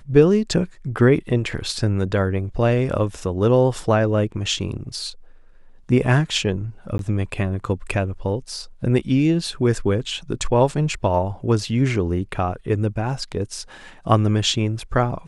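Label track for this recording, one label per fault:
6.980000	6.990000	drop-out 12 ms

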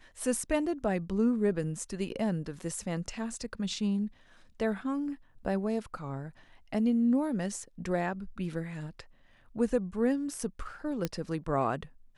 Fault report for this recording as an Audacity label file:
11.050000	11.050000	click −16 dBFS

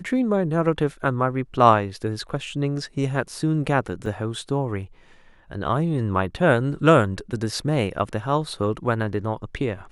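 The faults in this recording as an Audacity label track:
4.060000	4.060000	drop-out 3.1 ms

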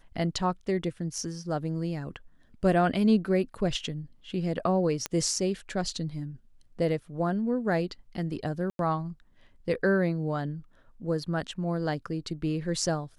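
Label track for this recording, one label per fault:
5.060000	5.060000	click −13 dBFS
8.700000	8.790000	drop-out 92 ms

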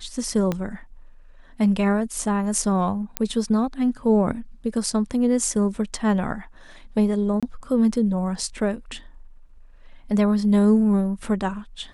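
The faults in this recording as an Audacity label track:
0.520000	0.520000	click −12 dBFS
3.170000	3.170000	click −6 dBFS
7.400000	7.430000	drop-out 26 ms

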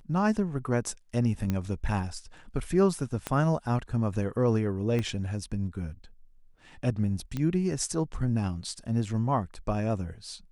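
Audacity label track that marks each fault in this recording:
1.500000	1.500000	click −16 dBFS
3.270000	3.270000	click −15 dBFS
4.990000	4.990000	click −19 dBFS
7.370000	7.370000	click −19 dBFS

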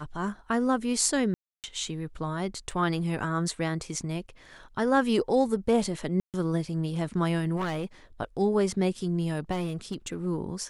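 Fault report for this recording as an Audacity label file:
1.340000	1.640000	drop-out 298 ms
2.710000	2.710000	drop-out 2.9 ms
6.200000	6.340000	drop-out 138 ms
7.560000	7.850000	clipping −26.5 dBFS
9.510000	10.270000	clipping −26 dBFS

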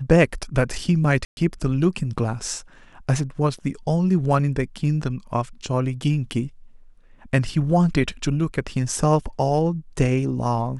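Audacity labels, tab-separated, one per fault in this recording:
1.250000	1.370000	drop-out 121 ms

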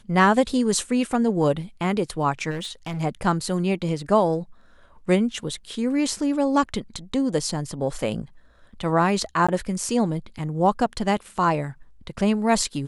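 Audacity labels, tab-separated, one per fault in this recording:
2.500000	3.010000	clipping −26 dBFS
9.470000	9.480000	drop-out 15 ms

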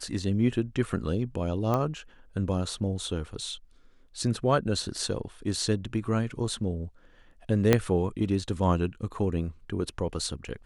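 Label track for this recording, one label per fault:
1.740000	1.740000	click −15 dBFS
7.730000	7.730000	click −6 dBFS

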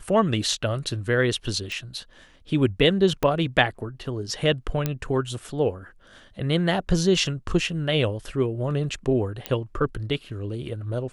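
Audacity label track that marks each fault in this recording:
1.720000	1.720000	click
3.230000	3.230000	click −10 dBFS
4.860000	4.860000	click −10 dBFS
9.460000	9.460000	click −11 dBFS

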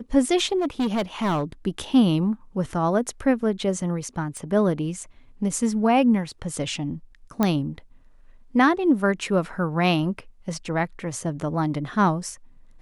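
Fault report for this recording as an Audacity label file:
0.580000	1.440000	clipping −19.5 dBFS
4.370000	4.370000	click −24 dBFS
7.430000	7.430000	click −8 dBFS

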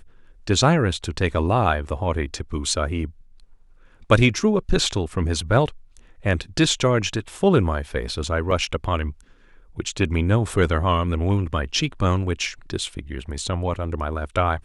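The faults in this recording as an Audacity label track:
8.510000	8.510000	drop-out 2.9 ms

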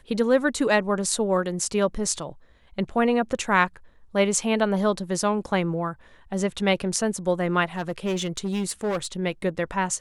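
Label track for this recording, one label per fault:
7.770000	9.060000	clipping −22 dBFS

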